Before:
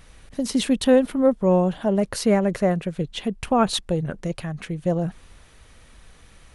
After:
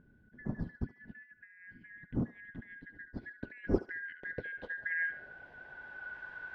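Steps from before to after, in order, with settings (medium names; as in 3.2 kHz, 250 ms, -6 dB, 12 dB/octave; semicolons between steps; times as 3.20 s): four frequency bands reordered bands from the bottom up 4123; compressor with a negative ratio -21 dBFS, ratio -0.5; low-pass sweep 220 Hz -> 960 Hz, 2.37–6.19 s; thinning echo 71 ms, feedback 41%, high-pass 750 Hz, level -11.5 dB; trim +4 dB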